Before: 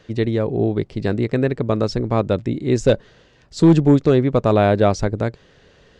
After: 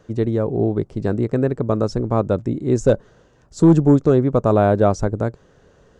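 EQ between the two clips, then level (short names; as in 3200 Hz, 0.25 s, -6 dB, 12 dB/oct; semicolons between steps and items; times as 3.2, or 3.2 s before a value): band shelf 3000 Hz -10.5 dB; 0.0 dB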